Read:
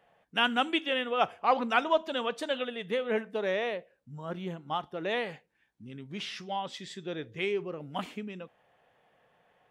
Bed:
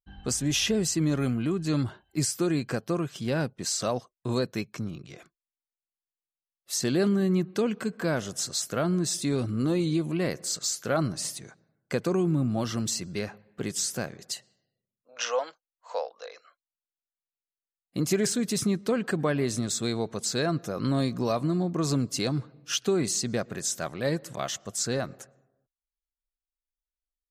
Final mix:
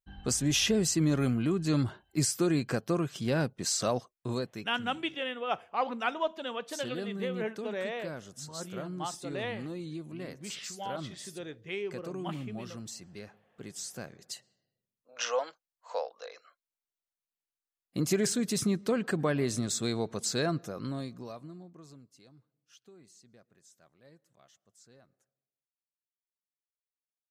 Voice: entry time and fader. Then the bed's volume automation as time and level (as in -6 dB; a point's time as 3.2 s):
4.30 s, -5.0 dB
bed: 4.11 s -1 dB
4.77 s -13.5 dB
13.53 s -13.5 dB
14.9 s -2.5 dB
20.46 s -2.5 dB
22.17 s -30.5 dB